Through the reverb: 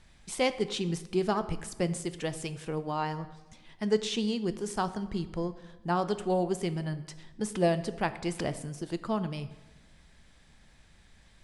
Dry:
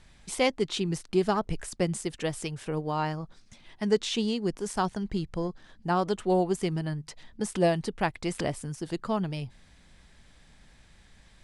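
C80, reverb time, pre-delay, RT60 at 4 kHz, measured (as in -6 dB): 16.0 dB, 1.1 s, 6 ms, 0.80 s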